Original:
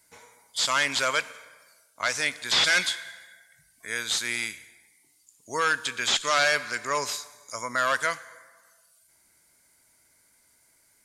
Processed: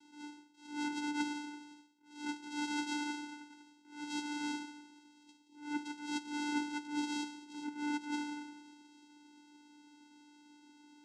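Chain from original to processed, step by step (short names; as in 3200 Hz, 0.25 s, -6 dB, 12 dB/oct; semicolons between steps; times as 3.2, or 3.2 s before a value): spectral limiter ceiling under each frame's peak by 19 dB; reverse; compressor 16:1, threshold -38 dBFS, peak gain reduction 20.5 dB; reverse; frequency shift -480 Hz; in parallel at -10.5 dB: sample-and-hold 34×; on the sum: flange 1.4 Hz, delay 4.3 ms, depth 7.5 ms, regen -38%; vocoder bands 4, square 295 Hz; attack slew limiter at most 120 dB/s; gain +9.5 dB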